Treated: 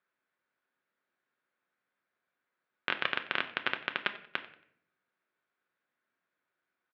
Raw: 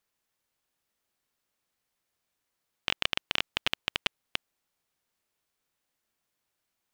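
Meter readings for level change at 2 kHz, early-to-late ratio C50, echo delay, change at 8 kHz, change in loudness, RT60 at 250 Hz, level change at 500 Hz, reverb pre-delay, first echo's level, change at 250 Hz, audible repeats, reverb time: +1.5 dB, 13.0 dB, 92 ms, under -25 dB, -2.5 dB, 0.90 s, +0.5 dB, 5 ms, -19.0 dB, -0.5 dB, 2, 0.65 s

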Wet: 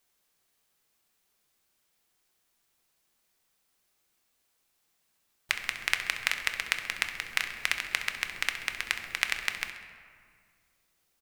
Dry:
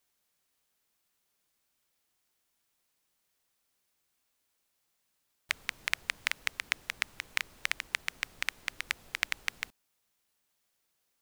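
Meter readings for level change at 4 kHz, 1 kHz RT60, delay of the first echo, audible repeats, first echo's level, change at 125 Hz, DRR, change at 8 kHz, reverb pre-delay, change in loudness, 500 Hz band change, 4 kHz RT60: +4.0 dB, 2.0 s, 66 ms, 2, -12.5 dB, +4.0 dB, 5.0 dB, +3.5 dB, 3 ms, +4.0 dB, +4.5 dB, 1.1 s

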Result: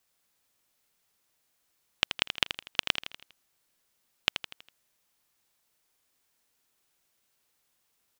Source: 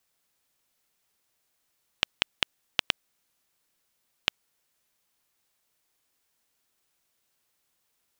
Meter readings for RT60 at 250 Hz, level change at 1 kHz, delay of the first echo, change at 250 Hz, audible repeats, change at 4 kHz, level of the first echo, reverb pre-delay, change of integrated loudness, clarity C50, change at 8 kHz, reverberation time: no reverb, +0.5 dB, 81 ms, +0.5 dB, 5, +0.5 dB, -9.0 dB, no reverb, +0.5 dB, no reverb, +0.5 dB, no reverb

